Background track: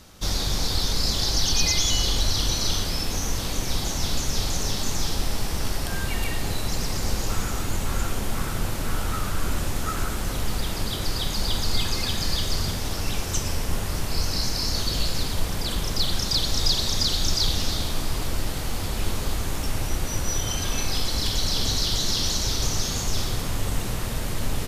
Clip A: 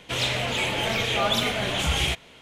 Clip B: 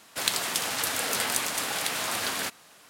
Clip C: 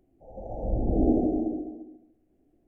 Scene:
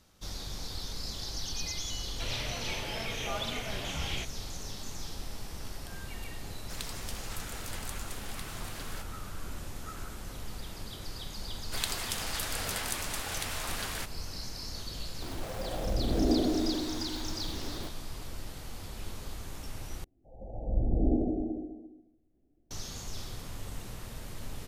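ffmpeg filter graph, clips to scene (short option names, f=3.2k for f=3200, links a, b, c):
-filter_complex "[2:a]asplit=2[a][b];[3:a]asplit=2[c][d];[0:a]volume=-14.5dB[e];[1:a]lowpass=6.1k[f];[c]aeval=exprs='val(0)+0.5*0.0282*sgn(val(0))':c=same[g];[d]lowshelf=f=200:g=9.5[h];[e]asplit=2[i][j];[i]atrim=end=20.044[k];[h]atrim=end=2.67,asetpts=PTS-STARTPTS,volume=-9dB[l];[j]atrim=start=22.706[m];[f]atrim=end=2.41,asetpts=PTS-STARTPTS,volume=-12dB,afade=t=in:d=0.004:c=hsin,afade=t=out:st=2.406:d=0.004:c=hsin,adelay=2100[n];[a]atrim=end=2.89,asetpts=PTS-STARTPTS,volume=-15.5dB,afade=t=in:d=0.004:c=hsin,afade=t=out:st=2.886:d=0.004:c=hsin,adelay=6530[o];[b]atrim=end=2.89,asetpts=PTS-STARTPTS,volume=-7.5dB,afade=t=in:d=0.004:c=hsin,afade=t=out:st=2.886:d=0.004:c=hsin,adelay=11560[p];[g]atrim=end=2.67,asetpts=PTS-STARTPTS,volume=-5dB,afade=t=in:d=0.004:c=hsin,afade=t=out:st=2.666:d=0.004:c=hsin,adelay=15220[q];[k][l]acrossfade=d=0.004:c1=hsin:c2=hsin[r];[r][m]acrossfade=d=0.004:c1=hsin:c2=hsin[s];[s][n][o][p][q]amix=inputs=5:normalize=0"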